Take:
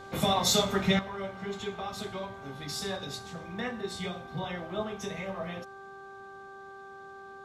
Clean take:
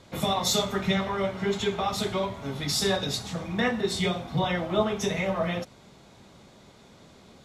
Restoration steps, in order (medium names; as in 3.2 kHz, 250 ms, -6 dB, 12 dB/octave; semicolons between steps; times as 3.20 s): de-hum 391.6 Hz, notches 4; gain correction +9.5 dB, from 0.99 s